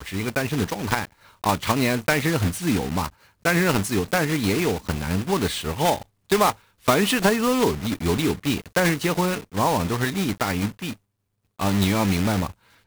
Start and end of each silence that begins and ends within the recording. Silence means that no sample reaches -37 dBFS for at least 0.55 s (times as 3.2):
10.93–11.59